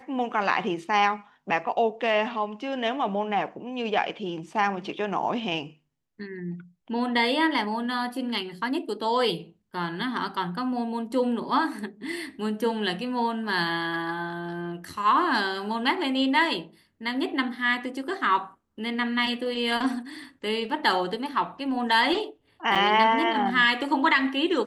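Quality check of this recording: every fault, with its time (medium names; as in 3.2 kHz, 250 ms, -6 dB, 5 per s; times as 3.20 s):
22.75–22.76 s: dropout 6.4 ms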